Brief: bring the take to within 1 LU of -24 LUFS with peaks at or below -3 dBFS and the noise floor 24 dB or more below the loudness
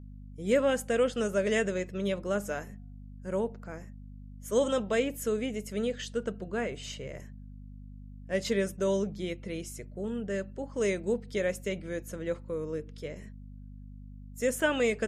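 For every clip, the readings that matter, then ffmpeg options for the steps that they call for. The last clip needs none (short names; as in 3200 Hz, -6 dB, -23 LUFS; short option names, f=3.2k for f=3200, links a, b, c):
hum 50 Hz; harmonics up to 250 Hz; hum level -44 dBFS; loudness -31.5 LUFS; peak -14.0 dBFS; loudness target -24.0 LUFS
-> -af "bandreject=f=50:t=h:w=4,bandreject=f=100:t=h:w=4,bandreject=f=150:t=h:w=4,bandreject=f=200:t=h:w=4,bandreject=f=250:t=h:w=4"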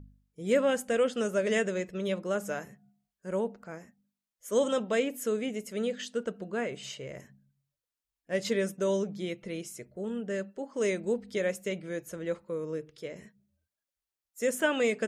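hum none; loudness -31.5 LUFS; peak -14.0 dBFS; loudness target -24.0 LUFS
-> -af "volume=7.5dB"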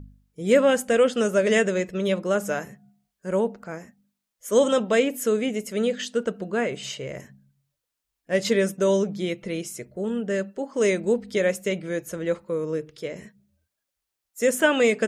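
loudness -24.0 LUFS; peak -6.5 dBFS; noise floor -83 dBFS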